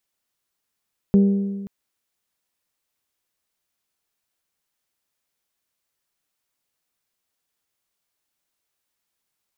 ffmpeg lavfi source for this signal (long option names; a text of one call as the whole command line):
ffmpeg -f lavfi -i "aevalsrc='0.316*pow(10,-3*t/1.49)*sin(2*PI*198*t)+0.1*pow(10,-3*t/1.21)*sin(2*PI*396*t)+0.0316*pow(10,-3*t/1.146)*sin(2*PI*475.2*t)+0.01*pow(10,-3*t/1.072)*sin(2*PI*594*t)+0.00316*pow(10,-3*t/0.983)*sin(2*PI*792*t)':duration=0.53:sample_rate=44100" out.wav